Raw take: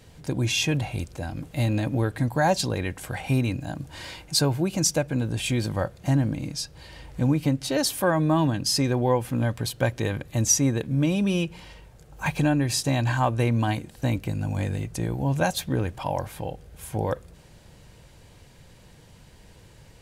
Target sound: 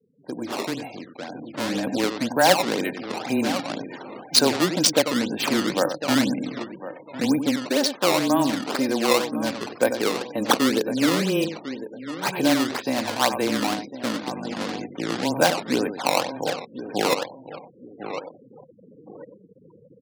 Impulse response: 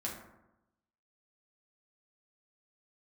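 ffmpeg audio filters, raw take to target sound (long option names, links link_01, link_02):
-filter_complex "[0:a]asplit=2[link_01][link_02];[link_02]adelay=93.29,volume=-9dB,highshelf=frequency=4000:gain=-2.1[link_03];[link_01][link_03]amix=inputs=2:normalize=0,afreqshift=-14,asplit=3[link_04][link_05][link_06];[link_04]afade=type=out:start_time=9.6:duration=0.02[link_07];[link_05]equalizer=frequency=460:width_type=o:width=0.76:gain=5,afade=type=in:start_time=9.6:duration=0.02,afade=type=out:start_time=12.59:duration=0.02[link_08];[link_06]afade=type=in:start_time=12.59:duration=0.02[link_09];[link_07][link_08][link_09]amix=inputs=3:normalize=0,aecho=1:1:1053|2106|3159:0.251|0.0628|0.0157,adynamicsmooth=sensitivity=2:basefreq=2400,acrusher=samples=16:mix=1:aa=0.000001:lfo=1:lforange=25.6:lforate=2,adynamicequalizer=threshold=0.00447:dfrequency=4300:dqfactor=1.6:tfrequency=4300:tqfactor=1.6:attack=5:release=100:ratio=0.375:range=2.5:mode=boostabove:tftype=bell,afftfilt=real='re*gte(hypot(re,im),0.00708)':imag='im*gte(hypot(re,im),0.00708)':win_size=1024:overlap=0.75,highpass=frequency=220:width=0.5412,highpass=frequency=220:width=1.3066,dynaudnorm=framelen=270:gausssize=11:maxgain=14dB,volume=-1dB"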